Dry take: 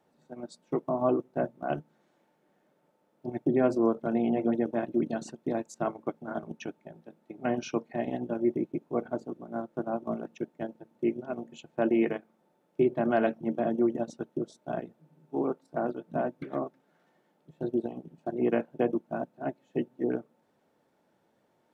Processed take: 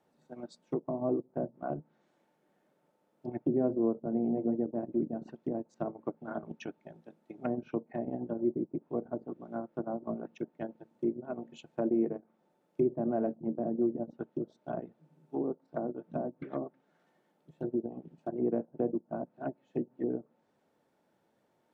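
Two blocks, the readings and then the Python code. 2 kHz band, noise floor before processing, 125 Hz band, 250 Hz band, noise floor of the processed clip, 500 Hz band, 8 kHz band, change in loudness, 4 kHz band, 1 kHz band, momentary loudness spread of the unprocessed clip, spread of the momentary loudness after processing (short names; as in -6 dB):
-13.0 dB, -71 dBFS, -3.0 dB, -3.0 dB, -74 dBFS, -4.5 dB, n/a, -4.0 dB, under -10 dB, -7.5 dB, 13 LU, 12 LU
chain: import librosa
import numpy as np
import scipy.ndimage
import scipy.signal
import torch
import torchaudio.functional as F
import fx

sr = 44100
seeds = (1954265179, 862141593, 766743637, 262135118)

y = fx.env_lowpass_down(x, sr, base_hz=570.0, full_db=-27.0)
y = y * 10.0 ** (-3.0 / 20.0)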